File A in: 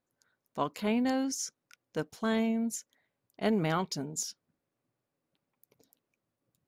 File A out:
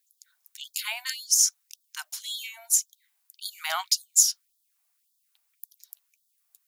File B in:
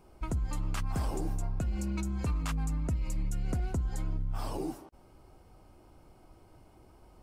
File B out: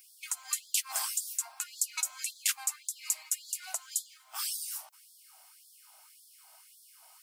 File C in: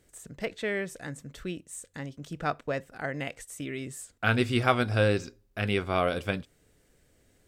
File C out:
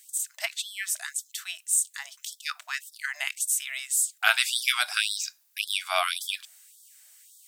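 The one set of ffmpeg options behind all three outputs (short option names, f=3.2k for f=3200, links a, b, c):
-af "crystalizer=i=10:c=0,afftfilt=real='re*gte(b*sr/1024,570*pow(3300/570,0.5+0.5*sin(2*PI*1.8*pts/sr)))':imag='im*gte(b*sr/1024,570*pow(3300/570,0.5+0.5*sin(2*PI*1.8*pts/sr)))':win_size=1024:overlap=0.75,volume=-3dB"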